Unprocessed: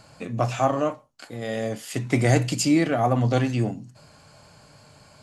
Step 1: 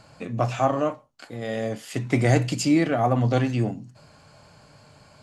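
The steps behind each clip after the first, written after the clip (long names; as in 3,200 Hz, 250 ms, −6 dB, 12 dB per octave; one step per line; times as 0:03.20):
high-shelf EQ 6,500 Hz −7 dB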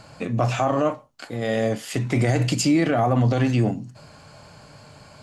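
brickwall limiter −17 dBFS, peak gain reduction 10.5 dB
level +5.5 dB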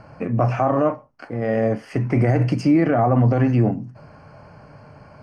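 moving average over 12 samples
level +3 dB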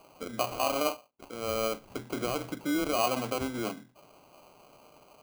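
band-pass filter 380–2,500 Hz
sample-rate reduction 1,800 Hz, jitter 0%
level −8 dB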